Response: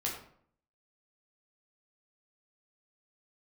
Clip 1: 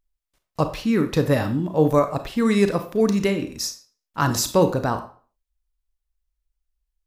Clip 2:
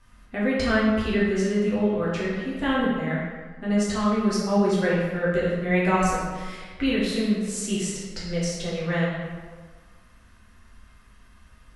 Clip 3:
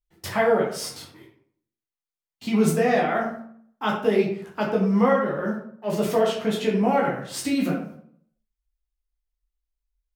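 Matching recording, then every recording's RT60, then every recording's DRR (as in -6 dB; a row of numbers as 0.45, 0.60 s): 3; 0.40, 1.6, 0.60 s; 8.0, -7.5, -3.5 dB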